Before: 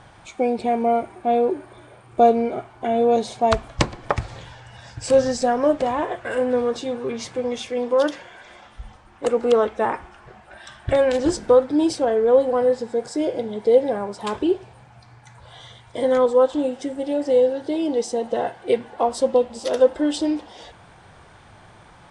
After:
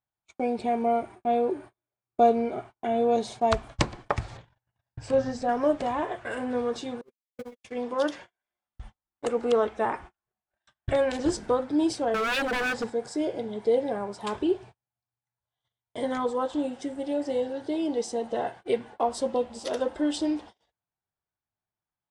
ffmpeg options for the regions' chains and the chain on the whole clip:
-filter_complex "[0:a]asettb=1/sr,asplit=3[a][b][c];[a]atrim=end=4.374[d];[b]atrim=start=4.37:end=5.49,asetpts=PTS-STARTPTS,afade=t=in:d=0.004:c=qsin,afade=t=out:st=1.116:d=0.004:c=qsin,lowpass=f=1.9k:p=1,equalizer=f=100:t=o:w=0.56:g=3.5,bandreject=f=50:t=h:w=6,bandreject=f=100:t=h:w=6,bandreject=f=150:t=h:w=6,bandreject=f=200:t=h:w=6,bandreject=f=250:t=h:w=6,bandreject=f=300:t=h:w=6,bandreject=f=350:t=h:w=6,bandreject=f=400:t=h:w=6,bandreject=f=450:t=h:w=6[e];[c]atrim=start=5.486[f];[d][e]acrossfade=d=0.004:c1=hsin:c2=qsin[g];[g][f]acrossfade=d=0.004:c1=qsin:c2=hsin,asettb=1/sr,asplit=3[h][i][j];[h]atrim=end=7.014[k];[i]atrim=start=7.01:end=7.64,asetpts=PTS-STARTPTS,afade=t=in:d=0.004:c=qsin,afade=t=out:st=0.626:d=0.004:c=qsin,aeval=exprs='val(0)+0.5*0.0282*sgn(val(0))':c=same,agate=range=-47dB:threshold=-20dB:ratio=16:release=100:detection=peak,acontrast=74[l];[j]atrim=start=7.636[m];[k][l]acrossfade=d=0.004:c1=hsin:c2=qsin[n];[n][m]acrossfade=d=0.004:c1=qsin:c2=hsin,asettb=1/sr,asplit=3[o][p][q];[o]atrim=end=12.144[r];[p]atrim=start=12.14:end=12.9,asetpts=PTS-STARTPTS,afade=t=in:d=0.004:c=qsin,afade=t=out:st=0.756:d=0.004:c=qsin,acontrast=49,aeval=exprs='0.158*(abs(mod(val(0)/0.158+3,4)-2)-1)':c=same[s];[q]atrim=start=12.896[t];[r][s]acrossfade=d=0.004:c1=hsin:c2=qsin[u];[u][t]acrossfade=d=0.004:c1=qsin:c2=hsin,bandreject=f=510:w=12,agate=range=-42dB:threshold=-37dB:ratio=16:detection=peak,volume=-5dB"

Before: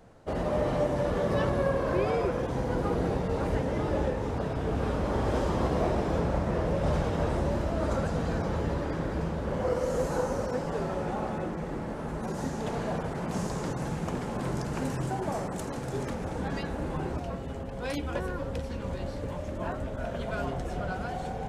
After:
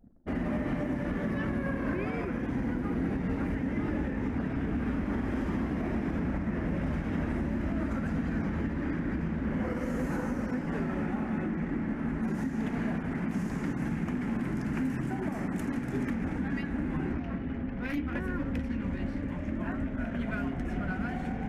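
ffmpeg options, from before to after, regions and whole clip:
-filter_complex "[0:a]asettb=1/sr,asplit=3[a][b][c];[a]atrim=end=17.134[d];[b]atrim=start=17.13:end=18.16,asetpts=PTS-STARTPTS,afade=t=in:d=0.004:c=qsin,afade=t=out:st=1.026:d=0.004:c=qsin,equalizer=f=8k:w=2.6:g=-13.5,aeval=exprs='clip(val(0),-1,0.0211)':c=same[e];[c]atrim=start=18.156[f];[d][e]acrossfade=d=0.004:c1=hsin:c2=qsin[g];[g][f]acrossfade=d=0.004:c1=qsin:c2=hsin,anlmdn=0.01,equalizer=f=125:t=o:w=1:g=-4,equalizer=f=250:t=o:w=1:g=12,equalizer=f=500:t=o:w=1:g=-11,equalizer=f=1k:t=o:w=1:g=-5,equalizer=f=2k:t=o:w=1:g=9,equalizer=f=4k:t=o:w=1:g=-10,equalizer=f=8k:t=o:w=1:g=-8,alimiter=limit=-23.5dB:level=0:latency=1:release=170,volume=1dB"

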